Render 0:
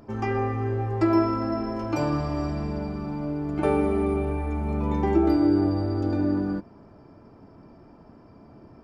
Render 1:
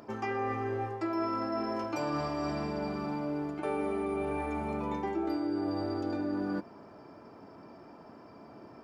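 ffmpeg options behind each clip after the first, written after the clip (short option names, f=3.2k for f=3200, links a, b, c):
-af "highpass=f=470:p=1,areverse,acompressor=threshold=-34dB:ratio=6,areverse,volume=4dB"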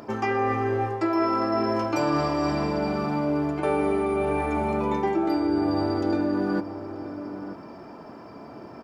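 -filter_complex "[0:a]asplit=2[a][b];[b]adelay=932.9,volume=-11dB,highshelf=f=4k:g=-21[c];[a][c]amix=inputs=2:normalize=0,volume=8.5dB"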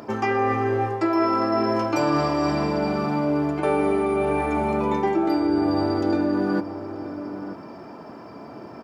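-af "highpass=70,volume=2.5dB"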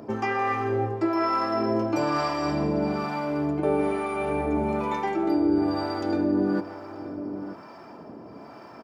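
-filter_complex "[0:a]asplit=2[a][b];[b]adelay=160,highpass=300,lowpass=3.4k,asoftclip=type=hard:threshold=-19.5dB,volume=-15dB[c];[a][c]amix=inputs=2:normalize=0,acrossover=split=670[d][e];[d]aeval=exprs='val(0)*(1-0.7/2+0.7/2*cos(2*PI*1.1*n/s))':c=same[f];[e]aeval=exprs='val(0)*(1-0.7/2-0.7/2*cos(2*PI*1.1*n/s))':c=same[g];[f][g]amix=inputs=2:normalize=0"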